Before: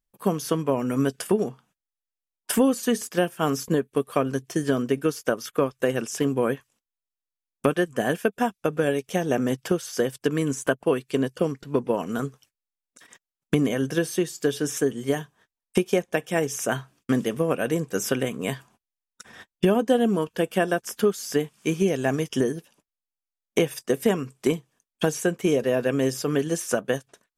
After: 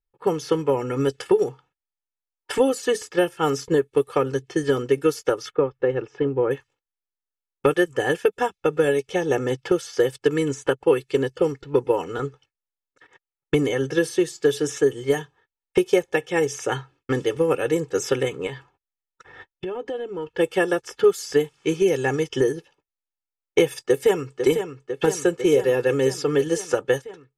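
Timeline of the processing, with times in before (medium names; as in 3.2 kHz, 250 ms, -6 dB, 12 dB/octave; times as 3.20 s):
5.53–6.51 s: tape spacing loss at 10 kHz 35 dB
18.46–20.29 s: compression, threshold -28 dBFS
23.82–24.38 s: echo throw 500 ms, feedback 75%, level -7.5 dB
whole clip: comb 2.3 ms, depth 93%; gate -49 dBFS, range -6 dB; level-controlled noise filter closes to 2.2 kHz, open at -14.5 dBFS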